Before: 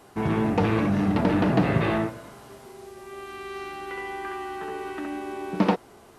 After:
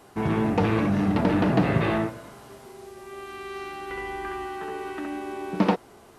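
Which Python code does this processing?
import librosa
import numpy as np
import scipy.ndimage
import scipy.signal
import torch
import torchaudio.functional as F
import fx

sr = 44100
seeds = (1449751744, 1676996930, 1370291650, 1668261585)

y = fx.low_shelf(x, sr, hz=130.0, db=11.0, at=(3.9, 4.48))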